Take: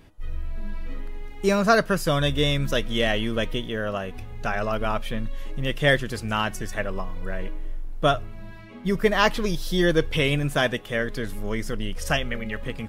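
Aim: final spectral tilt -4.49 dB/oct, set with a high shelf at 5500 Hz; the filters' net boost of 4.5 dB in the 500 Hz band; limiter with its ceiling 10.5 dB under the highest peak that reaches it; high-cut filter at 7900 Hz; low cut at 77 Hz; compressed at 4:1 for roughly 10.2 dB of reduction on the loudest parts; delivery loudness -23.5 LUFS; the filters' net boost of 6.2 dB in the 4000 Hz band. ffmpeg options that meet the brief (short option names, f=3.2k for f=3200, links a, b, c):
-af "highpass=77,lowpass=7.9k,equalizer=f=500:t=o:g=5.5,equalizer=f=4k:t=o:g=7,highshelf=f=5.5k:g=3.5,acompressor=threshold=-23dB:ratio=4,volume=9dB,alimiter=limit=-12dB:level=0:latency=1"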